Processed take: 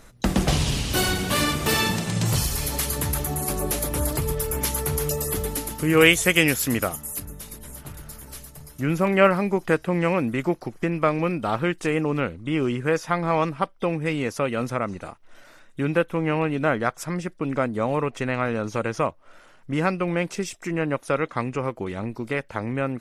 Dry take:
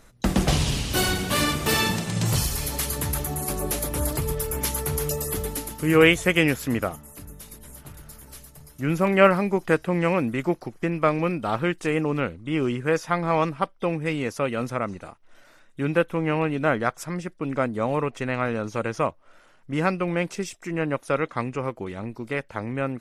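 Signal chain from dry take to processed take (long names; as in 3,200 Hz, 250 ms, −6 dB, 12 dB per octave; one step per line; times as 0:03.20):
0:05.97–0:07.20: high-shelf EQ 3,600 Hz +12 dB
in parallel at 0 dB: downward compressor, threshold −30 dBFS, peak gain reduction 19.5 dB
on the sum: level −2 dB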